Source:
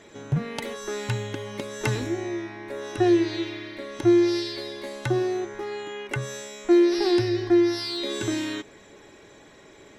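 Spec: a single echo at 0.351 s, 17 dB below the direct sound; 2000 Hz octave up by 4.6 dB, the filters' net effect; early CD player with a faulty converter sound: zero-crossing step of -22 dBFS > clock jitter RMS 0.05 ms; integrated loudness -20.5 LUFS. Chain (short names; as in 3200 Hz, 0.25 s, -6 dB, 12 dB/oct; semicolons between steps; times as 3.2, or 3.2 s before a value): bell 2000 Hz +5.5 dB; echo 0.351 s -17 dB; zero-crossing step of -22 dBFS; clock jitter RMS 0.05 ms; gain +1 dB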